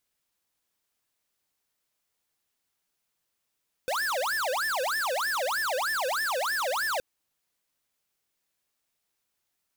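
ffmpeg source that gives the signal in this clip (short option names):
-f lavfi -i "aevalsrc='0.0376*(2*lt(mod((1140*t-640/(2*PI*3.2)*sin(2*PI*3.2*t)),1),0.5)-1)':d=3.12:s=44100"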